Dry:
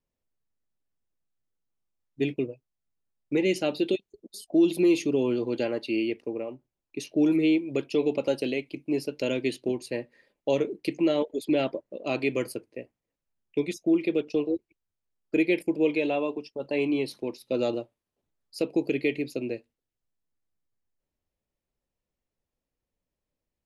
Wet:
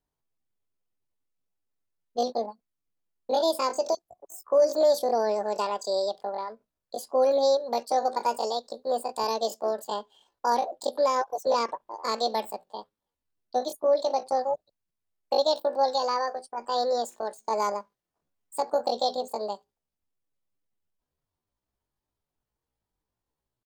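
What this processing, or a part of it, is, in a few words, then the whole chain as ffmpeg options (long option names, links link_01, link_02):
chipmunk voice: -filter_complex "[0:a]asettb=1/sr,asplit=3[link_01][link_02][link_03];[link_01]atrim=end=9.254[link_04];[link_02]atrim=start=9.25:end=9.94,asetpts=PTS-STARTPTS,afade=type=in:duration=0.004:curve=qsin,afade=type=out:start_time=0.686:duration=0.004:curve=qsin,highpass=94[link_05];[link_03]atrim=start=9.936[link_06];[link_04][link_05]acrossfade=duration=0.004:curve1=hsin:curve2=qsin[link_07];[link_07][link_06]acrossfade=duration=0.004:curve1=qsin:curve2=hsin,asetrate=76340,aresample=44100,atempo=0.577676"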